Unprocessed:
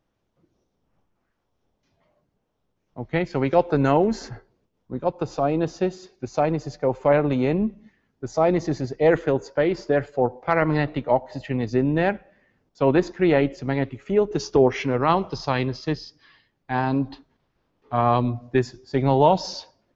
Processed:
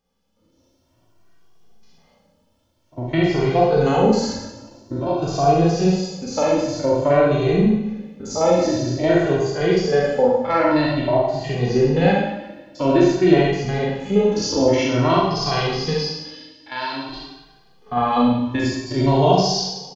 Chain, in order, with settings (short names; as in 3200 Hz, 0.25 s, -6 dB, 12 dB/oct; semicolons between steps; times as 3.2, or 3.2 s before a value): stepped spectrum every 50 ms; 15.96–17.09 band-pass 4500 Hz, Q 0.55; on a send: feedback echo 0.18 s, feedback 57%, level -23.5 dB; on the sum: AGC gain up to 8 dB; resonant high shelf 2800 Hz +6 dB, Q 1.5; notch 3800 Hz, Q 13; in parallel at -3 dB: compressor, threshold -28 dBFS, peak gain reduction 18.5 dB; on the sum: Schroeder reverb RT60 0.88 s, combs from 33 ms, DRR -3.5 dB; endless flanger 2 ms +0.5 Hz; gain -3 dB